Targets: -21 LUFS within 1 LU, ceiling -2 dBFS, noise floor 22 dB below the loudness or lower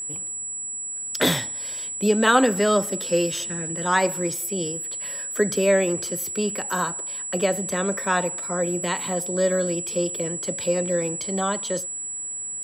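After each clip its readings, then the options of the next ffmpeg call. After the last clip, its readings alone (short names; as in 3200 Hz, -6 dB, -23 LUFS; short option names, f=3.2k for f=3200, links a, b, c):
steady tone 7800 Hz; tone level -29 dBFS; loudness -24.0 LUFS; peak -5.5 dBFS; loudness target -21.0 LUFS
-> -af "bandreject=f=7.8k:w=30"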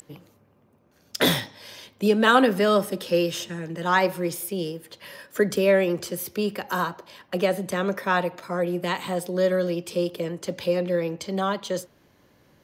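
steady tone none; loudness -24.5 LUFS; peak -6.0 dBFS; loudness target -21.0 LUFS
-> -af "volume=3.5dB"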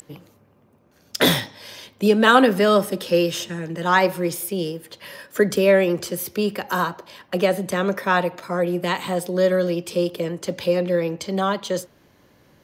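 loudness -21.0 LUFS; peak -2.5 dBFS; noise floor -57 dBFS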